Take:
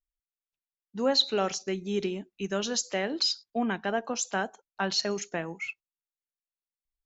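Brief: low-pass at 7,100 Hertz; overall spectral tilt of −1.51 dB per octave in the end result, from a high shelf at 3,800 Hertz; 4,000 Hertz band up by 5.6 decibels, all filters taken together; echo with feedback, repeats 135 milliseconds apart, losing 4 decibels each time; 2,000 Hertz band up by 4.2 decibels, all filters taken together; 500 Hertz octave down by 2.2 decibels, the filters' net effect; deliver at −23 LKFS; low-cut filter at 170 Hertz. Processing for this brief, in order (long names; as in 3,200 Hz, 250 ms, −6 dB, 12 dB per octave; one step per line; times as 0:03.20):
high-pass filter 170 Hz
low-pass filter 7,100 Hz
parametric band 500 Hz −3 dB
parametric band 2,000 Hz +4 dB
high-shelf EQ 3,800 Hz +4 dB
parametric band 4,000 Hz +3.5 dB
repeating echo 135 ms, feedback 63%, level −4 dB
level +1.5 dB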